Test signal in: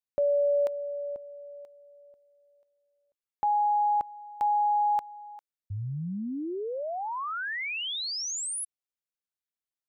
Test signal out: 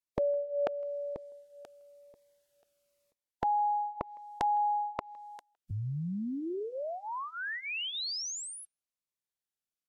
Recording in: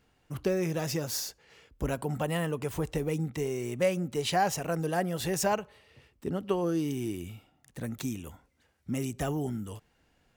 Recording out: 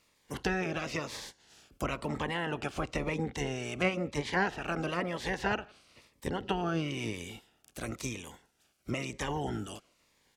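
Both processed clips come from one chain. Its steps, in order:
ceiling on every frequency bin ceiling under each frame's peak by 21 dB
treble cut that deepens with the level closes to 2,300 Hz, closed at −26 dBFS
far-end echo of a speakerphone 160 ms, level −27 dB
phaser whose notches keep moving one way falling 1 Hz

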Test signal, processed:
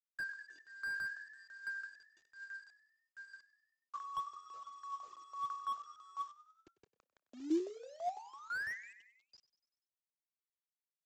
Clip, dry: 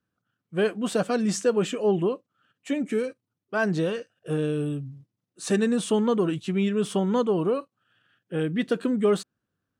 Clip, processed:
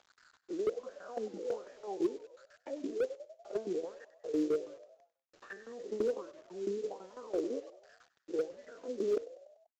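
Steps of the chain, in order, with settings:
spectrum averaged block by block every 100 ms
treble cut that deepens with the level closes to 550 Hz, closed at −26.5 dBFS
in parallel at −2.5 dB: upward compression, threshold −32 dBFS
on the sum: high-pass filter 140 Hz 6 dB per octave
shaped tremolo saw down 6 Hz, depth 85%
LFO wah 1.3 Hz 310–1,800 Hz, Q 5.9
three-way crossover with the lows and the highs turned down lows −18 dB, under 270 Hz, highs −21 dB, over 4,800 Hz
log-companded quantiser 6 bits
high-shelf EQ 6,200 Hz +6 dB
on a send: echo with shifted repeats 97 ms, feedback 56%, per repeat +47 Hz, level −17 dB
on the sum: downsampling to 16,000 Hz
slew-rate limiting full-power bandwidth 12 Hz
level +5 dB

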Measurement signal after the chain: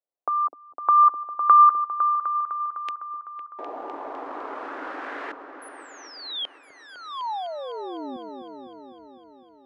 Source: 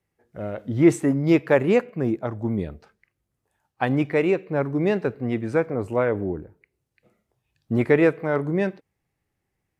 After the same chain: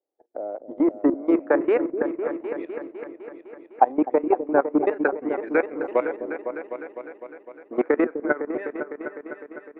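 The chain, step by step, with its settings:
elliptic high-pass filter 280 Hz, stop band 40 dB
brickwall limiter −14 dBFS
transient designer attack +10 dB, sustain −6 dB
output level in coarse steps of 18 dB
auto-filter low-pass saw up 0.31 Hz 600–3,300 Hz
echo whose low-pass opens from repeat to repeat 253 ms, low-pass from 400 Hz, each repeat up 2 octaves, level −6 dB

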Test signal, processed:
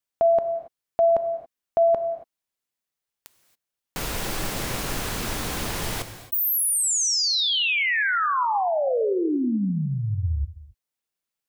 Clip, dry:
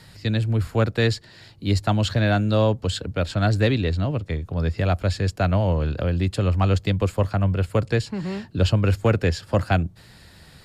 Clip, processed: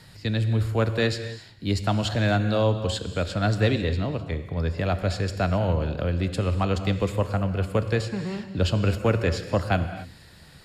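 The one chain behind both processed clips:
dynamic equaliser 130 Hz, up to −4 dB, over −31 dBFS, Q 1.8
reverb whose tail is shaped and stops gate 300 ms flat, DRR 9 dB
level −2 dB

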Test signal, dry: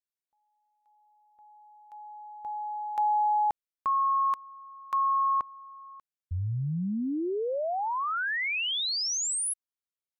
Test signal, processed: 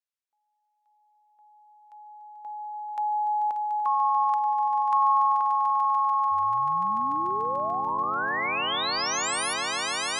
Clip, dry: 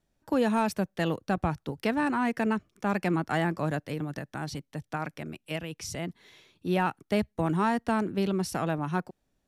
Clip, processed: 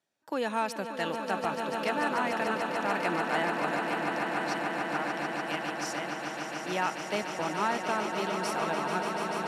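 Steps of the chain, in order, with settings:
meter weighting curve A
on a send: echo that builds up and dies away 146 ms, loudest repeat 8, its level −9 dB
on the sum: level −1.5 dB

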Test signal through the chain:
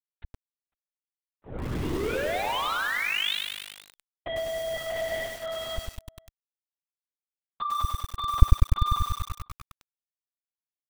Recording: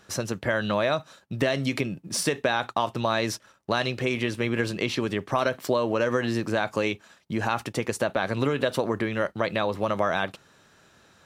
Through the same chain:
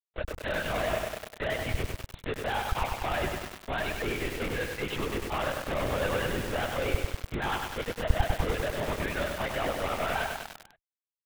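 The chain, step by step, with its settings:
high-pass filter 510 Hz 12 dB per octave
reverb reduction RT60 0.59 s
low-pass filter 1,700 Hz 12 dB per octave
noise reduction from a noise print of the clip's start 22 dB
fuzz pedal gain 51 dB, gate −45 dBFS
slap from a distant wall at 86 metres, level −29 dB
linear-prediction vocoder at 8 kHz whisper
feedback echo at a low word length 99 ms, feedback 80%, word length 4 bits, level −3 dB
level −16 dB

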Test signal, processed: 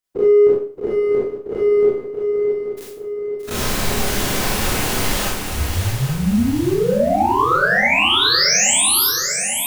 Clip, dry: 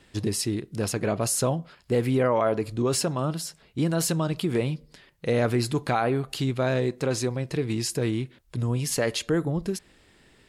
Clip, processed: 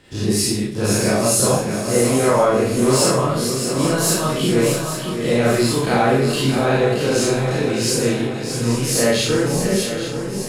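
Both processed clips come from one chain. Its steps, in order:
every bin's largest magnitude spread in time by 60 ms
in parallel at −10.5 dB: gain into a clipping stage and back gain 24.5 dB
on the sum: feedback echo with a long and a short gap by turns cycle 831 ms, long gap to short 3 to 1, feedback 48%, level −7.5 dB
four-comb reverb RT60 0.45 s, combs from 30 ms, DRR −5 dB
level −3 dB

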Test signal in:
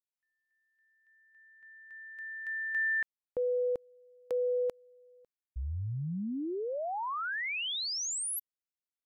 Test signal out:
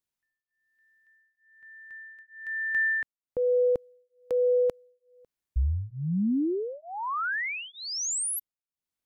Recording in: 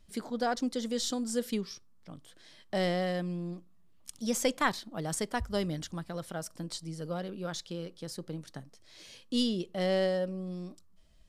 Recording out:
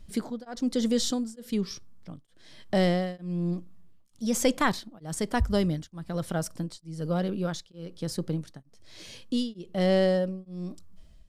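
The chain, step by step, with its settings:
low-shelf EQ 290 Hz +8 dB
in parallel at −1 dB: brickwall limiter −23.5 dBFS
on the sum: tremolo along a rectified sine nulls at 1.1 Hz

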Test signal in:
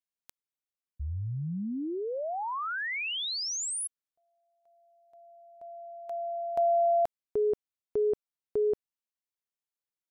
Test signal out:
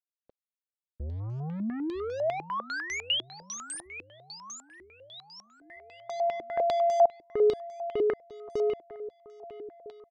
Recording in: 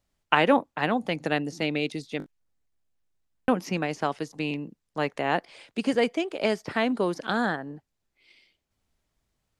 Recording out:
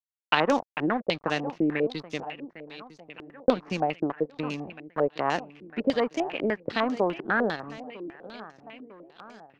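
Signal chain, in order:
in parallel at +1.5 dB: downward compressor 6 to 1, threshold −33 dBFS
on the sum: dead-zone distortion −38 dBFS
repeating echo 952 ms, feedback 53%, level −16.5 dB
low-pass on a step sequencer 10 Hz 340–6,100 Hz
level −4.5 dB

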